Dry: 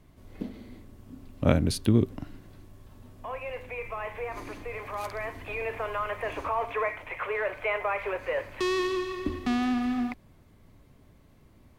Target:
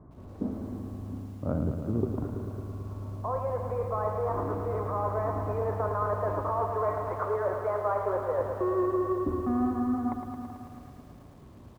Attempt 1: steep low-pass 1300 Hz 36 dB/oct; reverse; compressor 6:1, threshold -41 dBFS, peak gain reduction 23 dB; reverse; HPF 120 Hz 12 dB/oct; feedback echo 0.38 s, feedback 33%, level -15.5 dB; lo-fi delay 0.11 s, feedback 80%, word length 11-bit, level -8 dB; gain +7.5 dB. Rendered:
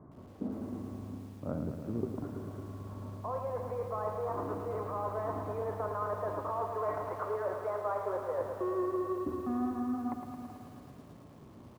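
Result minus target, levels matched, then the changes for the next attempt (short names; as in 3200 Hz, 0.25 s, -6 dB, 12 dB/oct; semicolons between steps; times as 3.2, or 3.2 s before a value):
compressor: peak gain reduction +5.5 dB; 125 Hz band -3.0 dB
change: compressor 6:1, threshold -34.5 dBFS, peak gain reduction 17.5 dB; change: HPF 55 Hz 12 dB/oct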